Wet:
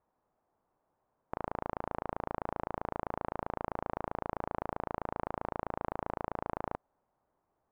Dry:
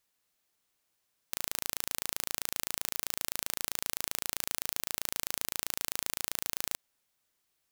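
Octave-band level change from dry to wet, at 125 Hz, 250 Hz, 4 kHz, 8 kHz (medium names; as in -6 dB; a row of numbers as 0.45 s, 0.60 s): +8.5 dB, +9.0 dB, under -25 dB, under -40 dB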